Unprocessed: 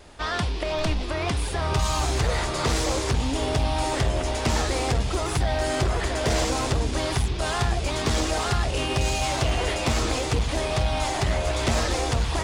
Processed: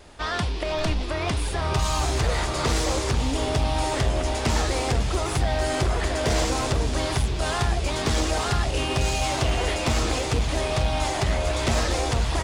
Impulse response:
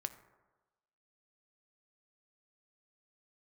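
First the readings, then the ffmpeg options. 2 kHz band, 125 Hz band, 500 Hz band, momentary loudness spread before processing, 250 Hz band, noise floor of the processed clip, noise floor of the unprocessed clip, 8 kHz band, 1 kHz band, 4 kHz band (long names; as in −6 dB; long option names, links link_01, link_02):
0.0 dB, +0.5 dB, 0.0 dB, 3 LU, 0.0 dB, −28 dBFS, −28 dBFS, 0.0 dB, 0.0 dB, 0.0 dB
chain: -af "aecho=1:1:490|980|1470|1960|2450|2940:0.188|0.109|0.0634|0.0368|0.0213|0.0124"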